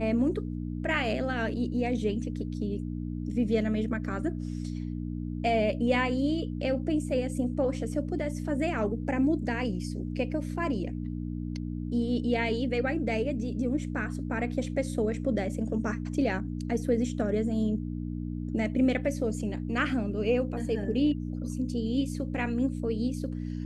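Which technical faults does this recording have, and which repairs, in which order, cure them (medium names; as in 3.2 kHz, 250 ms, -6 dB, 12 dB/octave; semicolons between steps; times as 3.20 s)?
hum 60 Hz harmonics 5 -34 dBFS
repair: de-hum 60 Hz, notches 5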